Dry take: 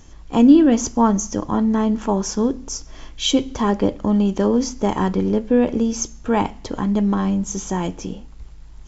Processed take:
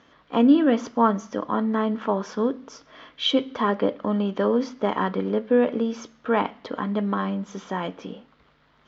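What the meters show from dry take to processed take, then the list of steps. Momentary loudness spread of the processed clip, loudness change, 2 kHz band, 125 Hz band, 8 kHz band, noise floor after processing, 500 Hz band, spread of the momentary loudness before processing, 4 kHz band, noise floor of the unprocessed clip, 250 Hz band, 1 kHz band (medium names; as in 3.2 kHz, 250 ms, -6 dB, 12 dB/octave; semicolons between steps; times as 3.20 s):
11 LU, -5.0 dB, +1.0 dB, -8.5 dB, no reading, -61 dBFS, -2.0 dB, 10 LU, -2.5 dB, -40 dBFS, -6.5 dB, -1.5 dB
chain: cabinet simulation 320–3500 Hz, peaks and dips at 350 Hz -9 dB, 830 Hz -7 dB, 1.3 kHz +3 dB, 2.6 kHz -5 dB; trim +1.5 dB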